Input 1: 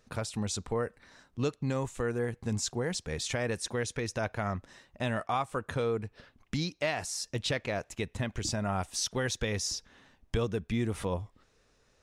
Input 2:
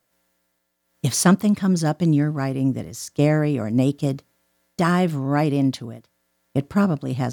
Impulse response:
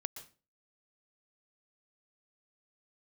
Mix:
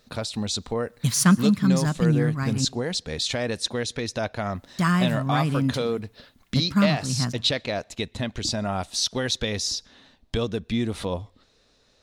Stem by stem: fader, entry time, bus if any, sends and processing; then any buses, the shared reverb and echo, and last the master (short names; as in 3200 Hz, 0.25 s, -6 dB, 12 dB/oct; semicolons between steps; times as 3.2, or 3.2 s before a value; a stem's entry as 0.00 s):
+1.5 dB, 0.00 s, send -23.5 dB, fifteen-band EQ 250 Hz +5 dB, 630 Hz +4 dB, 4000 Hz +12 dB
-3.0 dB, 0.00 s, muted 2.65–4.52, send -9 dB, band shelf 500 Hz -11 dB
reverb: on, RT60 0.35 s, pre-delay 0.113 s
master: dry